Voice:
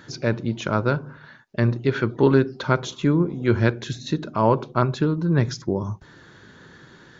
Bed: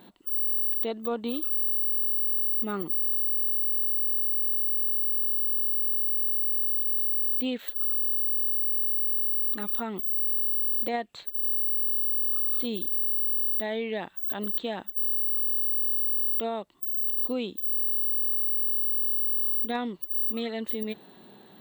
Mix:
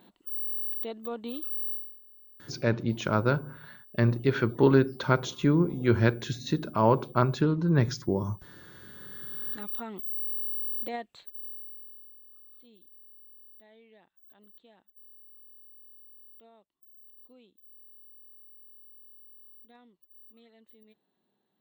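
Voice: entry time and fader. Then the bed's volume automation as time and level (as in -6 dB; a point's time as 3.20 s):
2.40 s, -3.5 dB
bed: 1.73 s -6 dB
2.01 s -28 dB
8.74 s -28 dB
9.54 s -6 dB
11.06 s -6 dB
12.21 s -26.5 dB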